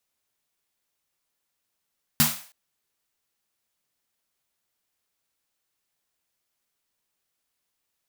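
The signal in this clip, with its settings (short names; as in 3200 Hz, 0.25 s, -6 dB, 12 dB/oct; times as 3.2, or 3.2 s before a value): snare drum length 0.32 s, tones 150 Hz, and 230 Hz, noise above 610 Hz, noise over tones 3.5 dB, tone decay 0.26 s, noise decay 0.45 s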